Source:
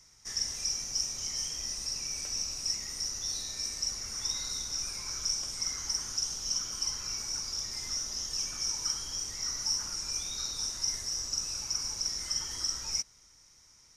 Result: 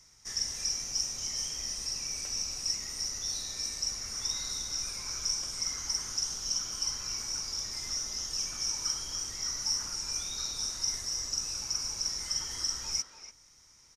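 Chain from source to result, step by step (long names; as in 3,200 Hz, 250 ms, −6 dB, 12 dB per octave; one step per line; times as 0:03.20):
far-end echo of a speakerphone 290 ms, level −7 dB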